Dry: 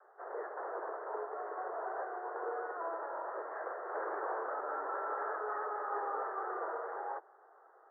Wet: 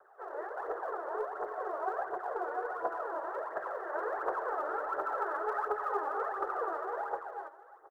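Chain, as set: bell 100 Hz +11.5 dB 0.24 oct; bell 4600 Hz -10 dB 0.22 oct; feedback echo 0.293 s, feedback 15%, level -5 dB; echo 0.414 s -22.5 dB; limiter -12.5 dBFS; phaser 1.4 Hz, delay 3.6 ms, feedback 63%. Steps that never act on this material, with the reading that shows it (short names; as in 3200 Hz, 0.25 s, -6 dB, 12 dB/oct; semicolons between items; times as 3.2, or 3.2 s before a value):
bell 100 Hz: input band starts at 270 Hz; bell 4600 Hz: input band ends at 2000 Hz; limiter -12.5 dBFS: input peak -24.5 dBFS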